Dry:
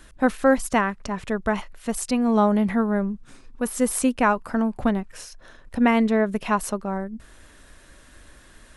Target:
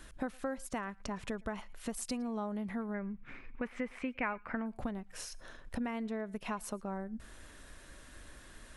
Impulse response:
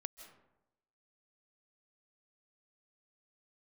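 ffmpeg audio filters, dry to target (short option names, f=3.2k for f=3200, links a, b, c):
-filter_complex "[0:a]acompressor=threshold=-32dB:ratio=6,asettb=1/sr,asplit=3[a][b][c];[a]atrim=end=2.944[d];[b]atrim=start=2.94:end=4.66,asetpts=PTS-STARTPTS,afade=t=in:d=0.004:c=qsin,afade=t=out:st=1.716:d=0.004:c=qsin,lowpass=f=2.2k:t=q:w=4.6[e];[c]atrim=start=4.656[f];[d][e]acrossfade=d=0.004:c1=hsin:c2=qsin[g];[g][f]acrossfade=d=0.004:c1=qsin:c2=hsin[h];[1:a]atrim=start_sample=2205,atrim=end_sample=6174,asetrate=52920,aresample=44100[i];[h][i]afir=irnorm=-1:irlink=0,volume=2dB"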